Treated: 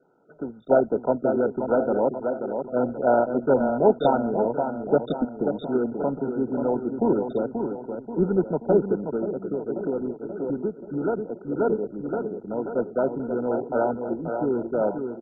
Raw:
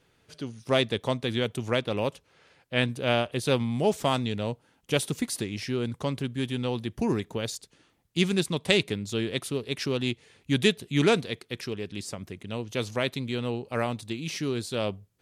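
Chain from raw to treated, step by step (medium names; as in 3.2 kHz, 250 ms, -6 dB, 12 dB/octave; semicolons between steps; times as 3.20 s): peaking EQ 1.2 kHz -6.5 dB 0.34 oct; feedback delay 533 ms, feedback 51%, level -6.5 dB; de-esser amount 50%; treble shelf 3.5 kHz -5 dB; 9.14–11.60 s: compression 5:1, threshold -28 dBFS, peak gain reduction 10.5 dB; Bessel high-pass 270 Hz, order 8; trim +7.5 dB; MP2 8 kbps 16 kHz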